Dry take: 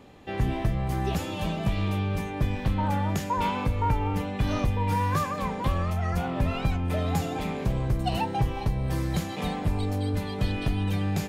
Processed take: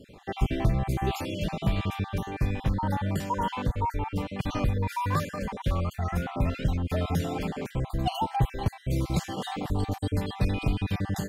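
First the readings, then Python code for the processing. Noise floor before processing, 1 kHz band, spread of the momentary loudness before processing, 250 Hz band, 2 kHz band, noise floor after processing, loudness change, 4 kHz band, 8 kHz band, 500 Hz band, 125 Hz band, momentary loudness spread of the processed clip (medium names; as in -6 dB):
-34 dBFS, -2.0 dB, 3 LU, -1.5 dB, -2.0 dB, -49 dBFS, -1.5 dB, -1.0 dB, -1.5 dB, -1.5 dB, -1.5 dB, 4 LU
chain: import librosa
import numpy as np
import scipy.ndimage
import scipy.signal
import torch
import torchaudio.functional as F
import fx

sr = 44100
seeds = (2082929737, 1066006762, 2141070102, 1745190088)

y = fx.spec_dropout(x, sr, seeds[0], share_pct=36)
y = fx.rider(y, sr, range_db=5, speed_s=2.0)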